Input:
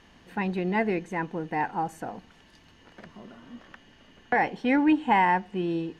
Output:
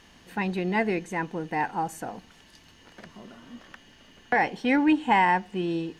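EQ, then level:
high-shelf EQ 4,100 Hz +10 dB
0.0 dB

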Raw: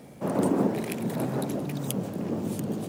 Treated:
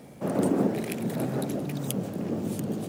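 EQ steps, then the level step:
dynamic equaliser 980 Hz, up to −6 dB, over −50 dBFS, Q 3.9
0.0 dB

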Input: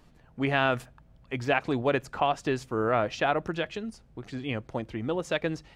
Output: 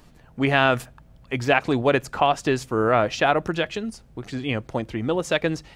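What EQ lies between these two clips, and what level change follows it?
high-shelf EQ 6,100 Hz +6 dB
+6.0 dB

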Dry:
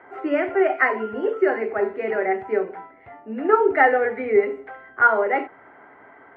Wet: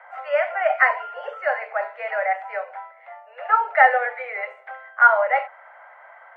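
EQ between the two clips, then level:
Butterworth high-pass 530 Hz 96 dB per octave
+2.5 dB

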